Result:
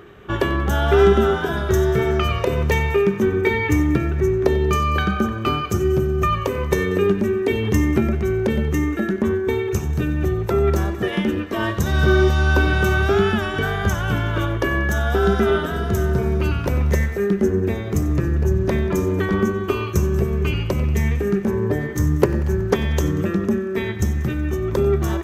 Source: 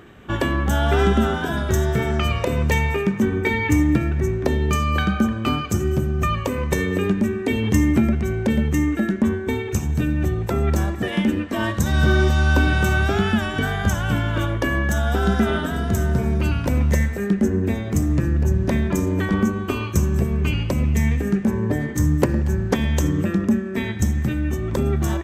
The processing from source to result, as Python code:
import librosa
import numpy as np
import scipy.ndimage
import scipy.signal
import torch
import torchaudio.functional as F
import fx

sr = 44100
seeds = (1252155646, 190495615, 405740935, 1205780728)

y = fx.graphic_eq_31(x, sr, hz=(250, 400, 1250, 8000), db=(-7, 8, 4, -7))
y = fx.echo_thinned(y, sr, ms=93, feedback_pct=70, hz=420.0, wet_db=-18.0)